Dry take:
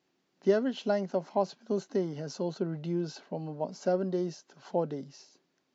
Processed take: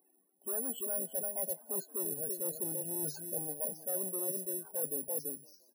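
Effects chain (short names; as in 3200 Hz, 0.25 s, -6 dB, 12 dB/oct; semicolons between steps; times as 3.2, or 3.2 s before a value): high shelf 6200 Hz -5.5 dB; echo 0.336 s -10 dB; soft clip -30.5 dBFS, distortion -7 dB; HPF 360 Hz 6 dB/oct; loudest bins only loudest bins 16; dynamic EQ 500 Hz, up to +6 dB, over -51 dBFS, Q 1.9; reverse; compressor 6:1, threshold -45 dBFS, peak gain reduction 15.5 dB; reverse; careless resampling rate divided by 4×, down none, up zero stuff; on a send: frequency-shifting echo 0.173 s, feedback 46%, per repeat +40 Hz, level -24 dB; on the sum: gain +4.5 dB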